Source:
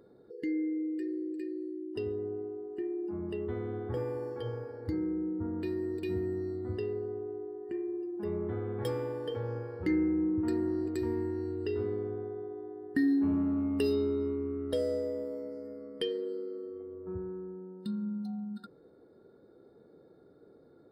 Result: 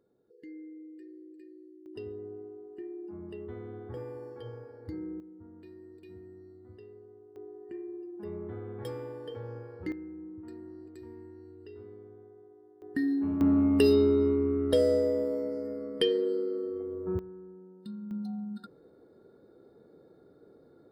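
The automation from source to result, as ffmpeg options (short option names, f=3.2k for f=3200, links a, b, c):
-af "asetnsamples=n=441:p=0,asendcmd='1.86 volume volume -6dB;5.2 volume volume -16dB;7.36 volume volume -5dB;9.92 volume volume -14.5dB;12.82 volume volume -2dB;13.41 volume volume 7dB;17.19 volume volume -6dB;18.11 volume volume 1dB',volume=-13.5dB"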